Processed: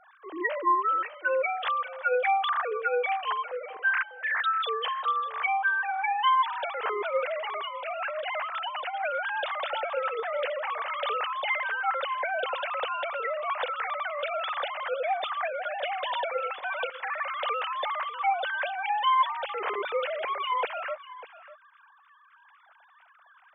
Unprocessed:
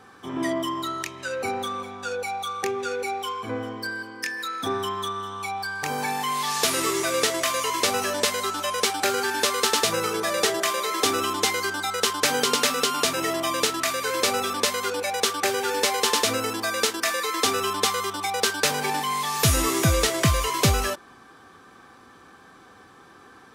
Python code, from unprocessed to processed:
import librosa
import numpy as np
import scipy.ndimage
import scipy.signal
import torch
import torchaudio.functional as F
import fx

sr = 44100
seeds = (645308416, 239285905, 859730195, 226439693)

p1 = fx.sine_speech(x, sr)
p2 = fx.over_compress(p1, sr, threshold_db=-31.0, ratio=-1.0, at=(7.34, 8.93), fade=0.02)
p3 = p2 + fx.echo_single(p2, sr, ms=596, db=-16.0, dry=0)
y = F.gain(torch.from_numpy(p3), -4.0).numpy()